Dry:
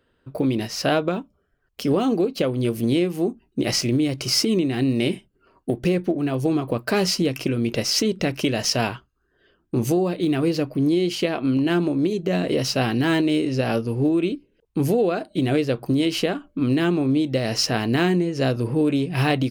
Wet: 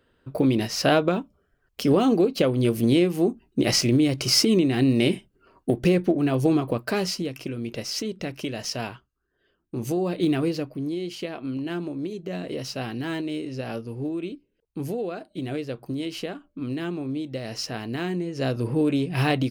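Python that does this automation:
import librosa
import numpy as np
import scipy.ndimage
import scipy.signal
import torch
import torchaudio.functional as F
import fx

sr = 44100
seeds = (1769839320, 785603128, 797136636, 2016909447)

y = fx.gain(x, sr, db=fx.line((6.52, 1.0), (7.3, -8.5), (9.77, -8.5), (10.24, 0.0), (10.83, -9.5), (18.0, -9.5), (18.67, -2.0)))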